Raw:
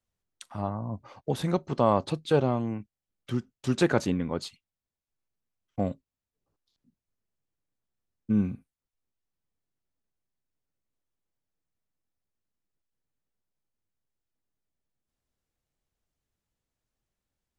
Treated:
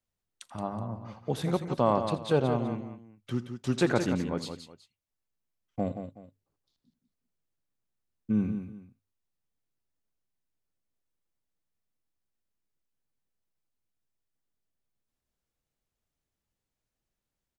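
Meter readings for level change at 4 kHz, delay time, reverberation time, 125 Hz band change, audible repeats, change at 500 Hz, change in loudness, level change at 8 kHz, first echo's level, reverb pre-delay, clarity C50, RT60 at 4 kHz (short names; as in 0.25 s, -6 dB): -1.5 dB, 83 ms, none, -1.5 dB, 3, -1.5 dB, -1.5 dB, -1.5 dB, -16.5 dB, none, none, none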